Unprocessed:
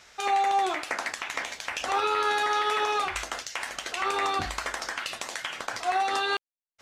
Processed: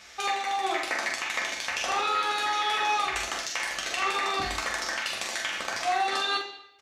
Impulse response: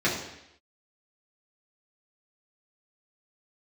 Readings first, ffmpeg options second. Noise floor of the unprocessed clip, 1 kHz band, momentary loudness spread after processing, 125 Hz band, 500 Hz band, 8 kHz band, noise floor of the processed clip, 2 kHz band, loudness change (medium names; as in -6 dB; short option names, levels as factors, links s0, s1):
under -85 dBFS, -1.5 dB, 4 LU, -2.0 dB, -3.0 dB, +3.0 dB, -49 dBFS, +1.5 dB, +0.5 dB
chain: -filter_complex "[0:a]acompressor=threshold=0.0178:ratio=1.5,asplit=2[s0][s1];[s1]adelay=44,volume=0.562[s2];[s0][s2]amix=inputs=2:normalize=0,asplit=2[s3][s4];[1:a]atrim=start_sample=2205,highshelf=f=2400:g=12[s5];[s4][s5]afir=irnorm=-1:irlink=0,volume=0.133[s6];[s3][s6]amix=inputs=2:normalize=0"